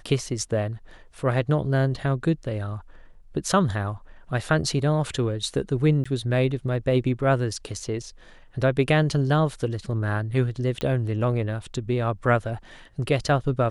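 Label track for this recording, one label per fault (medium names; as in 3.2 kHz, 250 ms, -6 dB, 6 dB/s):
6.040000	6.050000	dropout 15 ms
10.810000	10.810000	pop -15 dBFS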